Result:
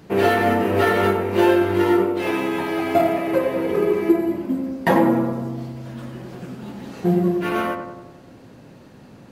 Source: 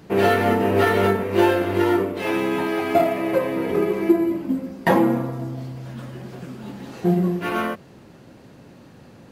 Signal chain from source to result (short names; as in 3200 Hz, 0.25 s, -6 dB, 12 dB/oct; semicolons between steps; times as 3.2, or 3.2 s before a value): darkening echo 94 ms, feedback 62%, low-pass 1500 Hz, level -6 dB